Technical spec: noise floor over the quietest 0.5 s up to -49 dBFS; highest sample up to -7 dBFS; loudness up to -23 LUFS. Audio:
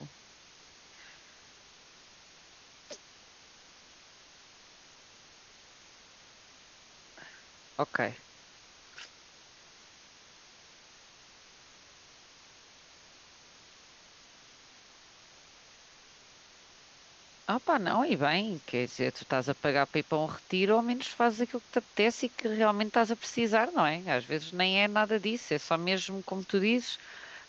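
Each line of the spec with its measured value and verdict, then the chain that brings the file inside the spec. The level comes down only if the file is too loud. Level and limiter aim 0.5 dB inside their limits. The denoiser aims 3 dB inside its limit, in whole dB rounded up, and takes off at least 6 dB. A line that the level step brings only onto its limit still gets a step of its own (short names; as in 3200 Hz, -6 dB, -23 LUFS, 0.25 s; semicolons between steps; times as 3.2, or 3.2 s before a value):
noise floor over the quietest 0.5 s -57 dBFS: OK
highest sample -11.0 dBFS: OK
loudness -29.5 LUFS: OK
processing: none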